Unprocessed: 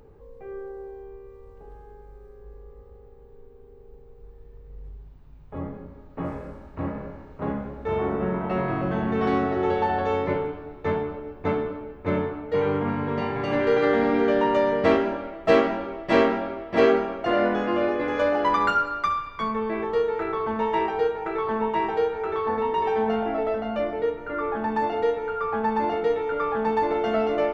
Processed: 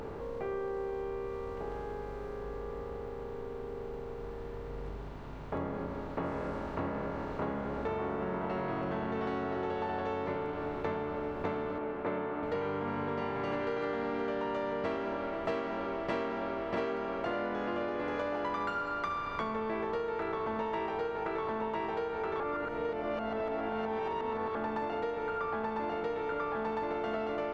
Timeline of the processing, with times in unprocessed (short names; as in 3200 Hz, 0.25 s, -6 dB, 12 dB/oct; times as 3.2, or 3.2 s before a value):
11.78–12.43 three-band isolator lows -17 dB, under 180 Hz, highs -22 dB, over 3000 Hz
22.4–24.55 reverse
whole clip: per-bin compression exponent 0.6; compressor 6:1, threshold -28 dBFS; gain -4 dB